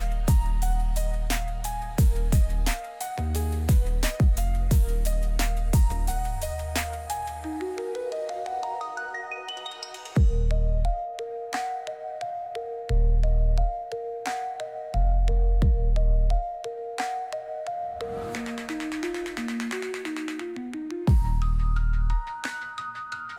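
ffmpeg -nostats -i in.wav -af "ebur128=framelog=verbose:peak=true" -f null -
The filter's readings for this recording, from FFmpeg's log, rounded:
Integrated loudness:
  I:         -27.9 LUFS
  Threshold: -37.9 LUFS
Loudness range:
  LRA:         6.2 LU
  Threshold: -48.0 LUFS
  LRA low:   -31.6 LUFS
  LRA high:  -25.4 LUFS
True peak:
  Peak:      -12.3 dBFS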